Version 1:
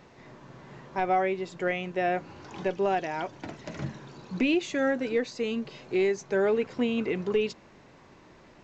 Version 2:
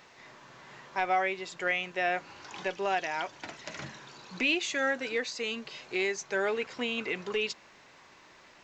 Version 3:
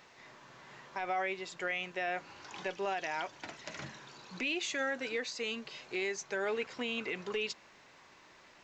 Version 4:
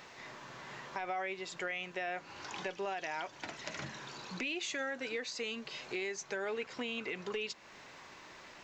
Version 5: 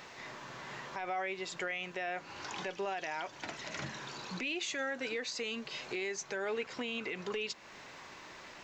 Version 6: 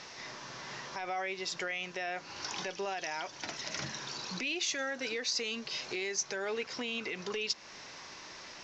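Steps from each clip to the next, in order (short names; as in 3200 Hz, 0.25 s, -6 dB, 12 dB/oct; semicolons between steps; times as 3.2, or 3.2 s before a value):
tilt shelf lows -9 dB, about 640 Hz; gain -3.5 dB
limiter -22 dBFS, peak gain reduction 7 dB; gain -3 dB
compressor 2:1, threshold -48 dBFS, peak gain reduction 10 dB; gain +6 dB
limiter -30 dBFS, peak gain reduction 6.5 dB; gain +2.5 dB
synth low-pass 5600 Hz, resonance Q 3.7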